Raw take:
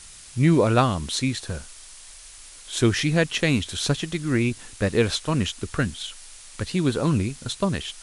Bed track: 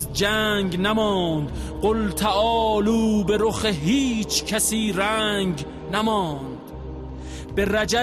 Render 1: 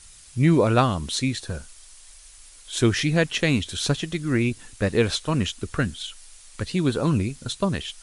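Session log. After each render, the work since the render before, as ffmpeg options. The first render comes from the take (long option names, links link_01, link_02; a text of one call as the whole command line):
ffmpeg -i in.wav -af "afftdn=noise_reduction=6:noise_floor=-45" out.wav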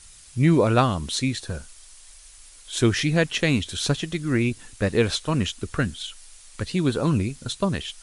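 ffmpeg -i in.wav -af anull out.wav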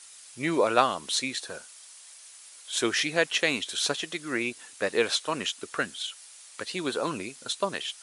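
ffmpeg -i in.wav -af "highpass=480" out.wav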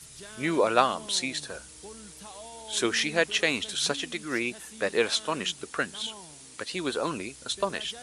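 ffmpeg -i in.wav -i bed.wav -filter_complex "[1:a]volume=-25.5dB[link_01];[0:a][link_01]amix=inputs=2:normalize=0" out.wav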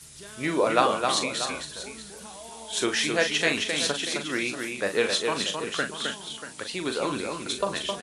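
ffmpeg -i in.wav -filter_complex "[0:a]asplit=2[link_01][link_02];[link_02]adelay=40,volume=-8dB[link_03];[link_01][link_03]amix=inputs=2:normalize=0,aecho=1:1:263|637:0.562|0.237" out.wav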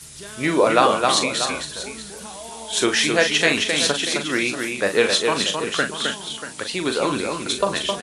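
ffmpeg -i in.wav -af "volume=6.5dB,alimiter=limit=-2dB:level=0:latency=1" out.wav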